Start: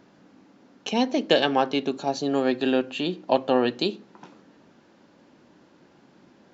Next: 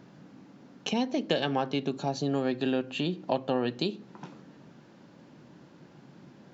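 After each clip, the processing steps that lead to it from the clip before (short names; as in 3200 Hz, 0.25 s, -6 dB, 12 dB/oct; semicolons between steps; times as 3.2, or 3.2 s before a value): bell 140 Hz +11 dB 0.86 oct; compressor 2:1, threshold -30 dBFS, peak gain reduction 9.5 dB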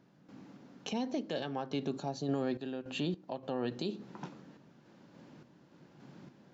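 random-step tremolo, depth 75%; limiter -24.5 dBFS, peak gain reduction 8 dB; dynamic EQ 2600 Hz, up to -4 dB, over -54 dBFS, Q 1.4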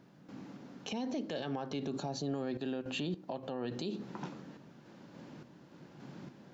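limiter -33 dBFS, peak gain reduction 8.5 dB; gain +4.5 dB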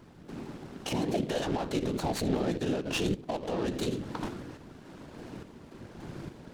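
whisperiser; noise-modulated delay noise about 2600 Hz, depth 0.031 ms; gain +7 dB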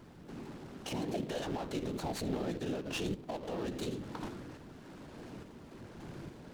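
G.711 law mismatch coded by mu; gain -7.5 dB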